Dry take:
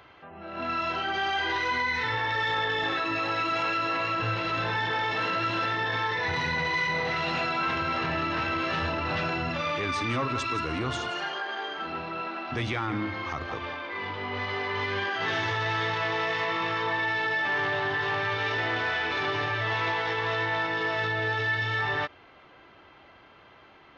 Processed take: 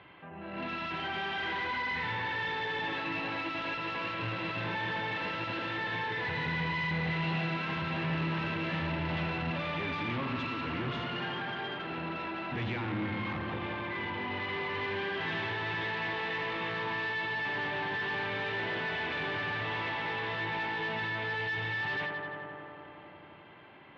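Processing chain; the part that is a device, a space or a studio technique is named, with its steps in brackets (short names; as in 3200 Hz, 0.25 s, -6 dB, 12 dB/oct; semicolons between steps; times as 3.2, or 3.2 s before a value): analogue delay pedal into a guitar amplifier (analogue delay 86 ms, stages 1024, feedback 85%, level -8.5 dB; tube stage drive 32 dB, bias 0.45; speaker cabinet 89–3400 Hz, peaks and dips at 170 Hz +6 dB, 460 Hz -4 dB, 690 Hz -5 dB, 1300 Hz -8 dB); gain +2.5 dB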